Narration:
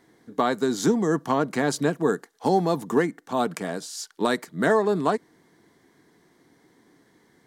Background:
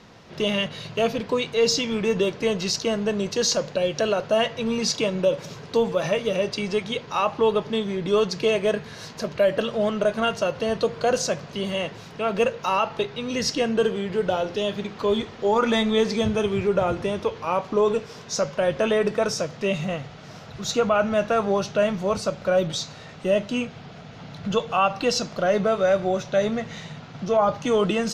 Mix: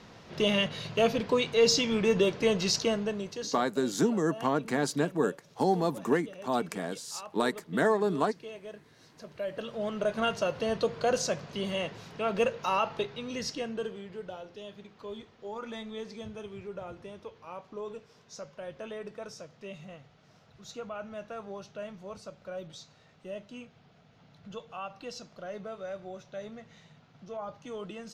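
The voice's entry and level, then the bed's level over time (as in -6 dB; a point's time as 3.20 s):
3.15 s, -5.0 dB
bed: 2.83 s -2.5 dB
3.79 s -22 dB
8.92 s -22 dB
10.22 s -5.5 dB
12.89 s -5.5 dB
14.43 s -19 dB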